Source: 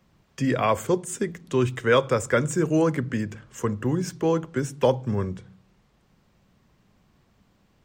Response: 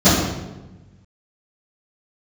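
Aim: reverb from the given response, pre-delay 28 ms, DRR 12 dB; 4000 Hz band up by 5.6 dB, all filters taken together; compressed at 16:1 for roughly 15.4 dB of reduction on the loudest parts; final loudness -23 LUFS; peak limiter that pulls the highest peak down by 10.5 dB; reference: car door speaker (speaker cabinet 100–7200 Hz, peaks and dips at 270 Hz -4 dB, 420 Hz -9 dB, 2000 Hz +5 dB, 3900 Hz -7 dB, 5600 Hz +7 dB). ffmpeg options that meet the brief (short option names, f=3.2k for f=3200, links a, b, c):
-filter_complex "[0:a]equalizer=f=4k:t=o:g=9,acompressor=threshold=-29dB:ratio=16,alimiter=level_in=3dB:limit=-24dB:level=0:latency=1,volume=-3dB,asplit=2[a][b];[1:a]atrim=start_sample=2205,adelay=28[c];[b][c]afir=irnorm=-1:irlink=0,volume=-37.5dB[d];[a][d]amix=inputs=2:normalize=0,highpass=100,equalizer=f=270:t=q:w=4:g=-4,equalizer=f=420:t=q:w=4:g=-9,equalizer=f=2k:t=q:w=4:g=5,equalizer=f=3.9k:t=q:w=4:g=-7,equalizer=f=5.6k:t=q:w=4:g=7,lowpass=f=7.2k:w=0.5412,lowpass=f=7.2k:w=1.3066,volume=14.5dB"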